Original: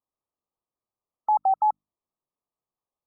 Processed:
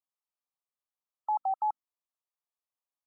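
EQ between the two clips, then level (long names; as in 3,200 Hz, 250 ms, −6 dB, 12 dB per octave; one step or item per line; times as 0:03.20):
high-pass filter 730 Hz 12 dB per octave
−6.0 dB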